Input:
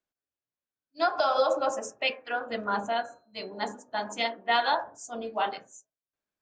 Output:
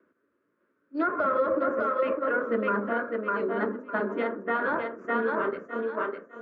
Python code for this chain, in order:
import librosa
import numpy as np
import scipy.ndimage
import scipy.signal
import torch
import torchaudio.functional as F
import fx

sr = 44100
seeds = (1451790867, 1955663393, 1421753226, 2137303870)

p1 = np.where(x < 0.0, 10.0 ** (-7.0 / 20.0) * x, x)
p2 = fx.echo_thinned(p1, sr, ms=604, feedback_pct=18, hz=330.0, wet_db=-5)
p3 = fx.over_compress(p2, sr, threshold_db=-30.0, ratio=-1.0)
p4 = p2 + F.gain(torch.from_numpy(p3), -1.0).numpy()
p5 = scipy.signal.sosfilt(scipy.signal.cheby1(3, 1.0, [120.0, 1400.0], 'bandpass', fs=sr, output='sos'), p4)
p6 = fx.fixed_phaser(p5, sr, hz=320.0, stages=4)
p7 = fx.band_squash(p6, sr, depth_pct=70)
y = F.gain(torch.from_numpy(p7), 7.0).numpy()